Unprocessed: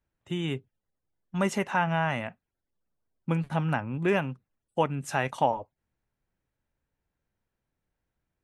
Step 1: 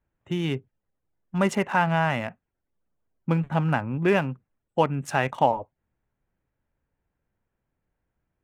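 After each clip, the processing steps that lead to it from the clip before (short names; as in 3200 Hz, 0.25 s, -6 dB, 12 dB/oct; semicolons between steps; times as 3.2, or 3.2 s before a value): Wiener smoothing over 9 samples; gain +4 dB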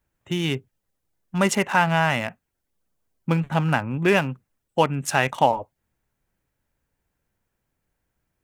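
high shelf 2700 Hz +10.5 dB; gain +1.5 dB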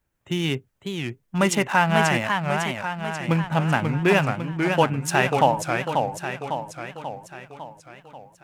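warbling echo 0.545 s, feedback 56%, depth 210 cents, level -5 dB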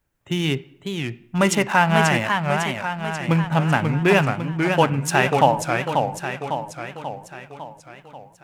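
reverb RT60 0.80 s, pre-delay 7 ms, DRR 16.5 dB; gain +2 dB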